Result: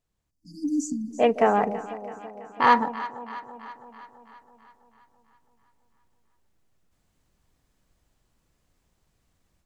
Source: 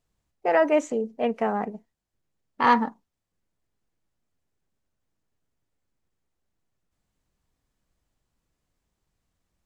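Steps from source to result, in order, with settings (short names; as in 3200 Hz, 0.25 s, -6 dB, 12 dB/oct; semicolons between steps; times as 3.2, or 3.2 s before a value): spectral delete 0.31–1.11, 310–4400 Hz; dynamic EQ 230 Hz, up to -5 dB, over -39 dBFS, Q 2.4; AGC gain up to 11 dB; on a send: echo with dull and thin repeats by turns 0.165 s, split 810 Hz, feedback 77%, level -12 dB; on the sum: gain -4 dB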